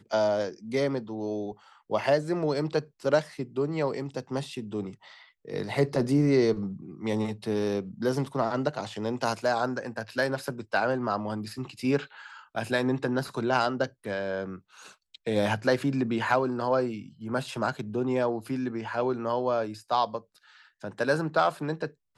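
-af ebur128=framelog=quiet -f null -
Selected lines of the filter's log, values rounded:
Integrated loudness:
  I:         -28.8 LUFS
  Threshold: -39.2 LUFS
Loudness range:
  LRA:         2.4 LU
  Threshold: -49.2 LUFS
  LRA low:   -30.4 LUFS
  LRA high:  -27.9 LUFS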